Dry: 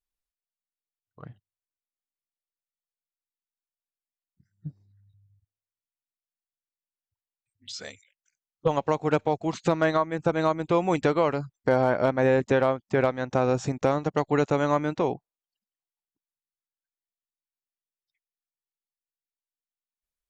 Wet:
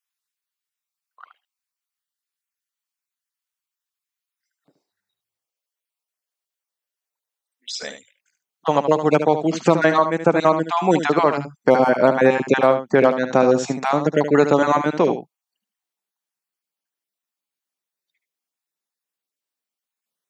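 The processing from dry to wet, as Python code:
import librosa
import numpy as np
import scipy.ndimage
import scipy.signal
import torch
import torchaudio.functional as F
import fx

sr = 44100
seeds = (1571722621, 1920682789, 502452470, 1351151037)

y = fx.spec_dropout(x, sr, seeds[0], share_pct=22)
y = fx.highpass(y, sr, hz=fx.steps((0.0, 990.0), (4.68, 410.0), (7.83, 160.0)), slope=24)
y = y + 10.0 ** (-9.5 / 20.0) * np.pad(y, (int(74 * sr / 1000.0), 0))[:len(y)]
y = F.gain(torch.from_numpy(y), 8.5).numpy()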